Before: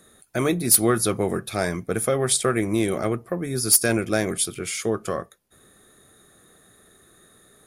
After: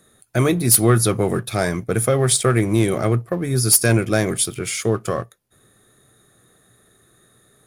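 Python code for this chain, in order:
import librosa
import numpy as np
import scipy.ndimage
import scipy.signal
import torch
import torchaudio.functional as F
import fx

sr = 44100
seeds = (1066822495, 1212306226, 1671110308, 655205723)

y = fx.leveller(x, sr, passes=1)
y = fx.peak_eq(y, sr, hz=120.0, db=10.5, octaves=0.35)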